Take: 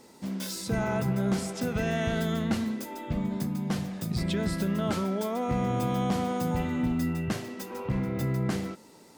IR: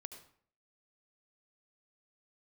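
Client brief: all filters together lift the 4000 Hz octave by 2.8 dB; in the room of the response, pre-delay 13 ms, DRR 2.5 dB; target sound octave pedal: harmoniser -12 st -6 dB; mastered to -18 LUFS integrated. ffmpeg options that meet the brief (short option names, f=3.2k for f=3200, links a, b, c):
-filter_complex "[0:a]equalizer=f=4k:t=o:g=3.5,asplit=2[a][b];[1:a]atrim=start_sample=2205,adelay=13[c];[b][c]afir=irnorm=-1:irlink=0,volume=2.5dB[d];[a][d]amix=inputs=2:normalize=0,asplit=2[e][f];[f]asetrate=22050,aresample=44100,atempo=2,volume=-6dB[g];[e][g]amix=inputs=2:normalize=0,volume=10dB"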